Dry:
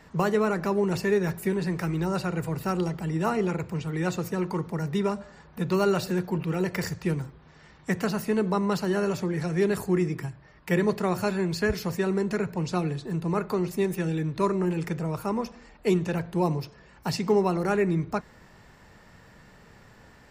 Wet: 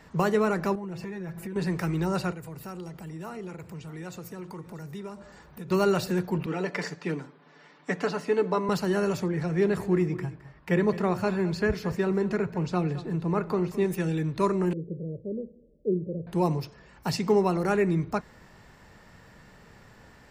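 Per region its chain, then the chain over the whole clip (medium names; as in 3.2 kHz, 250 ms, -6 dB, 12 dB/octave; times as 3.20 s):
0.75–1.56 s: treble shelf 3.8 kHz -10 dB + comb 6 ms, depth 80% + compression 8:1, threshold -33 dBFS
2.32–5.71 s: treble shelf 8.7 kHz +7 dB + compression 2:1, threshold -45 dBFS + delay 634 ms -18 dB
6.46–8.69 s: high-pass 210 Hz 24 dB/octave + distance through air 82 m + comb 6.9 ms, depth 55%
9.28–13.86 s: low-pass 2.9 kHz 6 dB/octave + delay 215 ms -16 dB
14.73–16.27 s: rippled Chebyshev low-pass 580 Hz, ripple 3 dB + bass shelf 190 Hz -8.5 dB
whole clip: none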